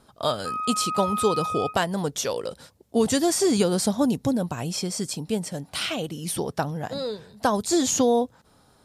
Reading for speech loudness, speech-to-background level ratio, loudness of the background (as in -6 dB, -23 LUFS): -25.5 LUFS, 3.5 dB, -29.0 LUFS